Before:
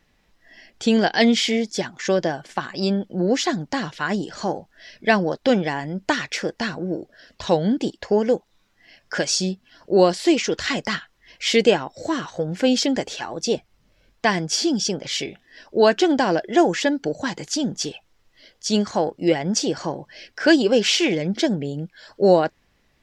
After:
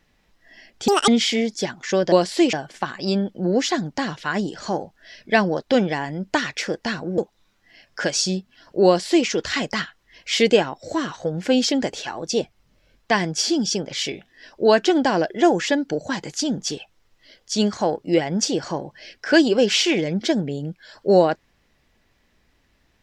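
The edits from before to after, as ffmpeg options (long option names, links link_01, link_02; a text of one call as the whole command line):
ffmpeg -i in.wav -filter_complex "[0:a]asplit=6[link_01][link_02][link_03][link_04][link_05][link_06];[link_01]atrim=end=0.884[link_07];[link_02]atrim=start=0.88:end=1.24,asetpts=PTS-STARTPTS,asetrate=79380,aresample=44100[link_08];[link_03]atrim=start=1.236:end=2.282[link_09];[link_04]atrim=start=9.998:end=10.412[link_10];[link_05]atrim=start=2.278:end=6.932[link_11];[link_06]atrim=start=8.318[link_12];[link_07][link_08]acrossfade=duration=0.004:curve1=hsin:curve2=hsin[link_13];[link_13][link_09]acrossfade=duration=0.004:curve1=hsin:curve2=hsin[link_14];[link_14][link_10]acrossfade=duration=0.004:curve1=hsin:curve2=hsin[link_15];[link_15][link_11]acrossfade=duration=0.004:curve1=hsin:curve2=hsin[link_16];[link_16][link_12]acrossfade=duration=0.004:curve1=hsin:curve2=hsin" out.wav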